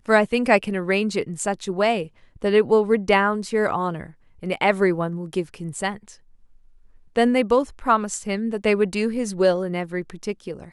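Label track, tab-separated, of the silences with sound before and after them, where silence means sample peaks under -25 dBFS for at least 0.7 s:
5.950000	7.160000	silence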